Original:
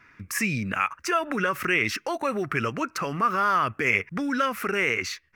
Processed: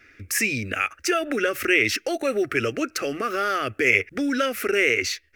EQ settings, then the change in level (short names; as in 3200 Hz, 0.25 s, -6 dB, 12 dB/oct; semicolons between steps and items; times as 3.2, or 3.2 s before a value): fixed phaser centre 410 Hz, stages 4; +6.5 dB